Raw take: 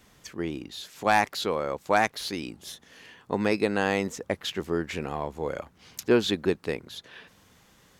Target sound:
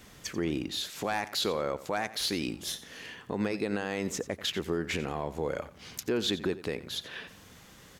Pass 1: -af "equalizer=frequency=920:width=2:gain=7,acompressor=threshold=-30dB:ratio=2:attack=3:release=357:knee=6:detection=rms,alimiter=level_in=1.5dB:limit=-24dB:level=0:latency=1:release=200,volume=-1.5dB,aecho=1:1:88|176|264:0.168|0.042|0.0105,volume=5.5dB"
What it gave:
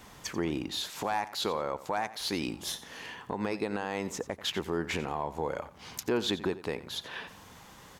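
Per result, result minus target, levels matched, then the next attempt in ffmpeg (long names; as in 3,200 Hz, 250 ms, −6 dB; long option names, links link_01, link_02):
downward compressor: peak gain reduction +11 dB; 1,000 Hz band +4.0 dB
-af "equalizer=frequency=920:width=2:gain=7,alimiter=level_in=1.5dB:limit=-24dB:level=0:latency=1:release=200,volume=-1.5dB,aecho=1:1:88|176|264:0.168|0.042|0.0105,volume=5.5dB"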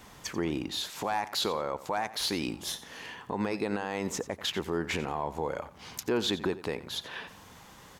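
1,000 Hz band +3.5 dB
-af "equalizer=frequency=920:width=2:gain=-2.5,alimiter=level_in=1.5dB:limit=-24dB:level=0:latency=1:release=200,volume=-1.5dB,aecho=1:1:88|176|264:0.168|0.042|0.0105,volume=5.5dB"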